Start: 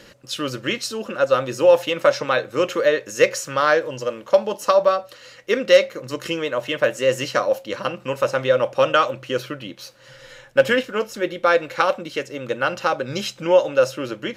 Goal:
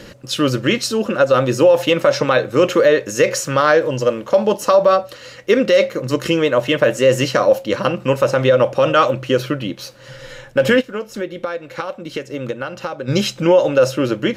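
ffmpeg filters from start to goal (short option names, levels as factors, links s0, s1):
-filter_complex "[0:a]asplit=3[s0][s1][s2];[s0]afade=t=out:st=10.8:d=0.02[s3];[s1]acompressor=threshold=0.0282:ratio=6,afade=t=in:st=10.8:d=0.02,afade=t=out:st=13.07:d=0.02[s4];[s2]afade=t=in:st=13.07:d=0.02[s5];[s3][s4][s5]amix=inputs=3:normalize=0,lowshelf=f=450:g=7.5,alimiter=level_in=2.66:limit=0.891:release=50:level=0:latency=1,volume=0.708"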